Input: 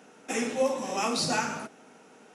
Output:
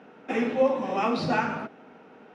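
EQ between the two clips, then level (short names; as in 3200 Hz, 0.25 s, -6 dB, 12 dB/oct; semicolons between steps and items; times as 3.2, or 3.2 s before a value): air absorption 350 m; bell 63 Hz +13.5 dB 0.26 oct; +5.0 dB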